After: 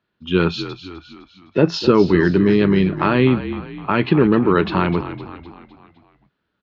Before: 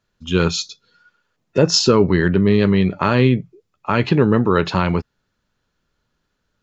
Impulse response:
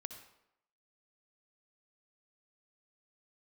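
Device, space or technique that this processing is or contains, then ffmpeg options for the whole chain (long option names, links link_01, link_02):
frequency-shifting delay pedal into a guitar cabinet: -filter_complex "[0:a]asplit=6[link_01][link_02][link_03][link_04][link_05][link_06];[link_02]adelay=255,afreqshift=-45,volume=-12.5dB[link_07];[link_03]adelay=510,afreqshift=-90,volume=-18.2dB[link_08];[link_04]adelay=765,afreqshift=-135,volume=-23.9dB[link_09];[link_05]adelay=1020,afreqshift=-180,volume=-29.5dB[link_10];[link_06]adelay=1275,afreqshift=-225,volume=-35.2dB[link_11];[link_01][link_07][link_08][link_09][link_10][link_11]amix=inputs=6:normalize=0,highpass=93,equalizer=frequency=110:width_type=q:width=4:gain=-6,equalizer=frequency=330:width_type=q:width=4:gain=5,equalizer=frequency=520:width_type=q:width=4:gain=-4,lowpass=frequency=3800:width=0.5412,lowpass=frequency=3800:width=1.3066"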